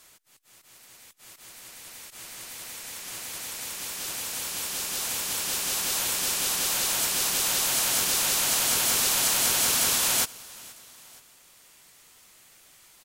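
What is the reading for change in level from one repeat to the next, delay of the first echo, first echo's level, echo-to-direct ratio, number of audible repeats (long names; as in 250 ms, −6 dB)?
−5.0 dB, 475 ms, −22.0 dB, −21.0 dB, 2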